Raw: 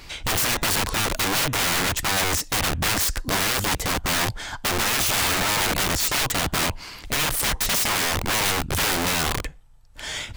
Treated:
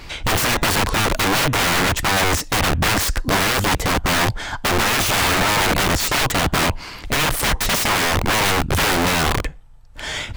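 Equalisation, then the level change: high shelf 3600 Hz -7.5 dB; +7.0 dB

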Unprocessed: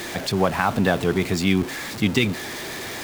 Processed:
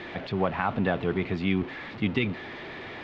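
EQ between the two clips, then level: LPF 3200 Hz 24 dB/oct; notch 1600 Hz, Q 25; -6.0 dB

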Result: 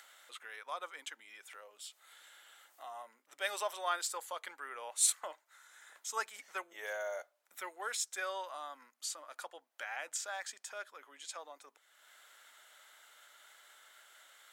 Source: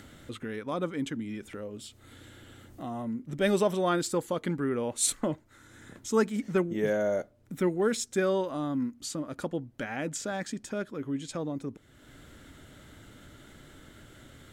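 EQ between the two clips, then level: HPF 750 Hz 24 dB/oct; high shelf 10000 Hz +5.5 dB; -3.5 dB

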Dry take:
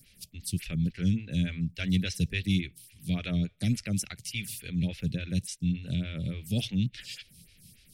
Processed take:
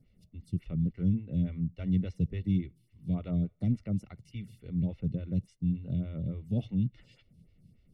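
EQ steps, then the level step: polynomial smoothing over 65 samples; -1.0 dB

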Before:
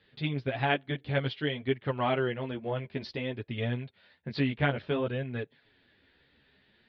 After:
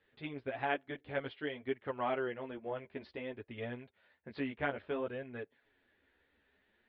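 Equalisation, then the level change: LPF 2200 Hz 12 dB/oct; bell 140 Hz -13.5 dB 1.1 oct; -5.0 dB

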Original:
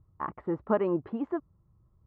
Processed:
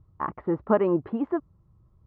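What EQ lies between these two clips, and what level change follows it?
air absorption 110 m; +5.0 dB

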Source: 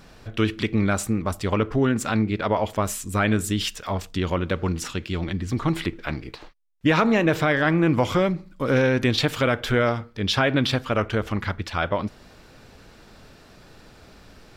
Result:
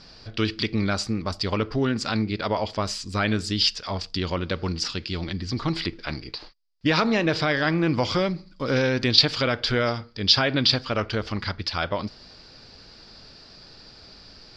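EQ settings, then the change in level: synth low-pass 4800 Hz, resonance Q 9.9; -3.0 dB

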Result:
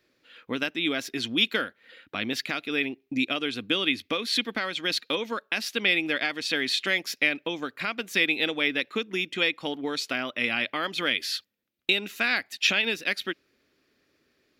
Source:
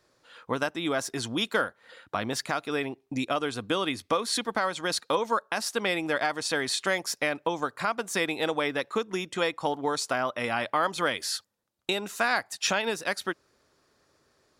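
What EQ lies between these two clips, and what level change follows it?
dynamic EQ 3500 Hz, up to +6 dB, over -42 dBFS, Q 0.88; EQ curve 140 Hz 0 dB, 260 Hz +9 dB, 970 Hz -6 dB, 2400 Hz +11 dB, 8900 Hz -6 dB, 13000 Hz +7 dB; -5.5 dB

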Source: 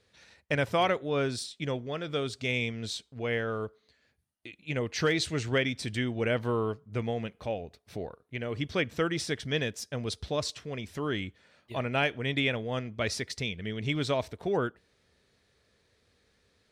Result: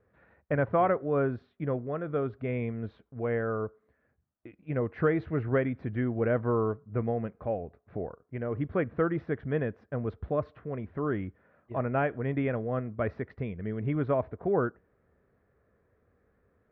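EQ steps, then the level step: LPF 1500 Hz 24 dB/oct; notch 890 Hz, Q 12; +2.0 dB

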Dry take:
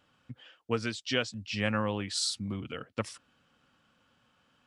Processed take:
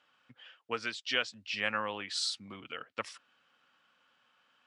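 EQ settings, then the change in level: band-pass 2000 Hz, Q 0.55; +1.5 dB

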